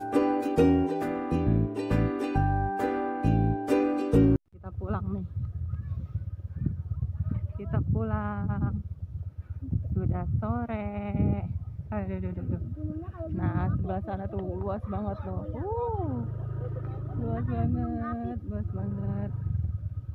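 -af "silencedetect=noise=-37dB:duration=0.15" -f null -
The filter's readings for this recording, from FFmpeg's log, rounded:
silence_start: 4.36
silence_end: 4.65 | silence_duration: 0.29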